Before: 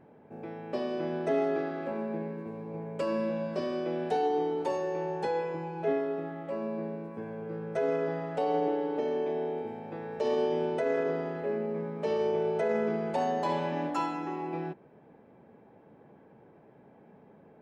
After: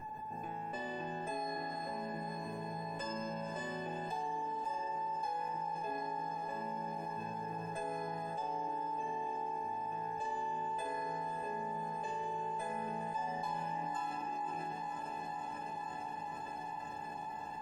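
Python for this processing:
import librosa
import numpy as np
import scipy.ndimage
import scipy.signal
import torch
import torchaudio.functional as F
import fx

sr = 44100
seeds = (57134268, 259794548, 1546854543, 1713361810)

y = fx.peak_eq(x, sr, hz=76.0, db=3.0, octaves=0.77)
y = fx.comb_fb(y, sr, f0_hz=860.0, decay_s=0.35, harmonics='all', damping=0.0, mix_pct=100)
y = fx.echo_diffused(y, sr, ms=549, feedback_pct=79, wet_db=-11.5)
y = fx.env_flatten(y, sr, amount_pct=70)
y = y * 10.0 ** (13.0 / 20.0)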